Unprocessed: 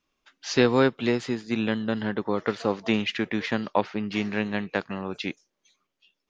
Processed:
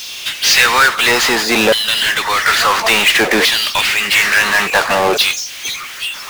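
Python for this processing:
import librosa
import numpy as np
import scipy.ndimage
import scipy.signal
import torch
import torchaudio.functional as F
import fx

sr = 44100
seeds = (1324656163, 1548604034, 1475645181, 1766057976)

y = fx.filter_lfo_highpass(x, sr, shape='saw_down', hz=0.58, low_hz=540.0, high_hz=4000.0, q=1.7)
y = fx.power_curve(y, sr, exponent=0.35)
y = F.gain(torch.from_numpy(y), 6.0).numpy()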